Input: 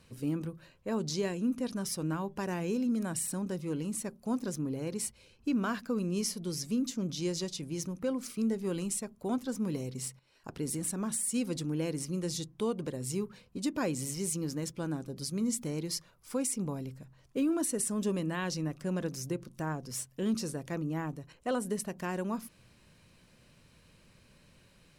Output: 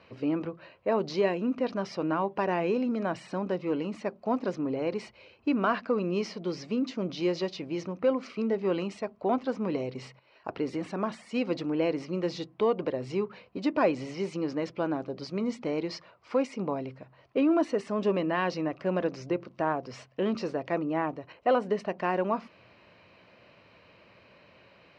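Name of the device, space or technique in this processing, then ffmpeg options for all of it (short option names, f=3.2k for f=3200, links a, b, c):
overdrive pedal into a guitar cabinet: -filter_complex "[0:a]asplit=2[a][b];[b]highpass=f=720:p=1,volume=6dB,asoftclip=type=tanh:threshold=-22dB[c];[a][c]amix=inputs=2:normalize=0,lowpass=f=2.9k:p=1,volume=-6dB,highpass=110,equalizer=f=150:t=q:w=4:g=-9,equalizer=f=230:t=q:w=4:g=-5,equalizer=f=650:t=q:w=4:g=5,equalizer=f=1.6k:t=q:w=4:g=-5,equalizer=f=3.5k:t=q:w=4:g=-8,lowpass=f=4k:w=0.5412,lowpass=f=4k:w=1.3066,volume=9dB"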